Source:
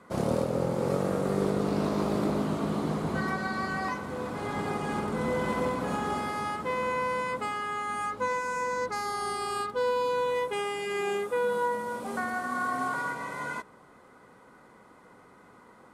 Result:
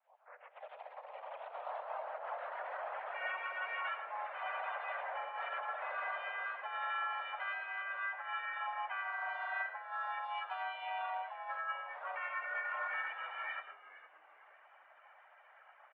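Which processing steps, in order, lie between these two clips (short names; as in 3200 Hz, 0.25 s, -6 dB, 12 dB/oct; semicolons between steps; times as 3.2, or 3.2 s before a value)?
tape start at the beginning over 2.75 s; reverb removal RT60 1.6 s; negative-ratio compressor -33 dBFS, ratio -0.5; soft clip -24 dBFS, distortion -23 dB; bit-crush 12-bit; mistuned SSB +340 Hz 270–2200 Hz; digital reverb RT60 0.42 s, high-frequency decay 0.4×, pre-delay 65 ms, DRR 10.5 dB; harmoniser -3 st -15 dB, +4 st -4 dB; frequency-shifting echo 0.462 s, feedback 31%, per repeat -94 Hz, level -16 dB; gain -6.5 dB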